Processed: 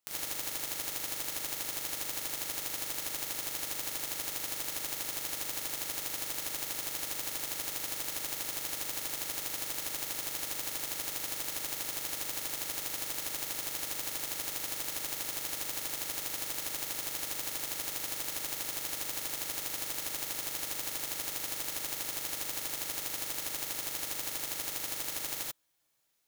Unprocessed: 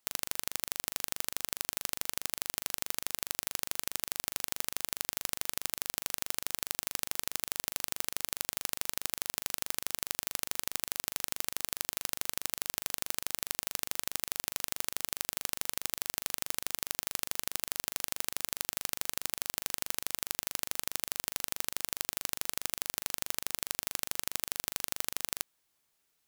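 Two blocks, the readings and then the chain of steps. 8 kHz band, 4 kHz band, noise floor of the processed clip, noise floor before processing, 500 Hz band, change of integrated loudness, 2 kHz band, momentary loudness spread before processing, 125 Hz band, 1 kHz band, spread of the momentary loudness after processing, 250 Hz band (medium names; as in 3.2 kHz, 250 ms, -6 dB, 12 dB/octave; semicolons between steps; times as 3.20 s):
0.0 dB, 0.0 dB, -41 dBFS, -77 dBFS, +1.5 dB, 0.0 dB, -0.5 dB, 0 LU, +0.5 dB, 0.0 dB, 0 LU, +1.5 dB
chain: gated-style reverb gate 110 ms rising, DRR -7 dB; trim -8 dB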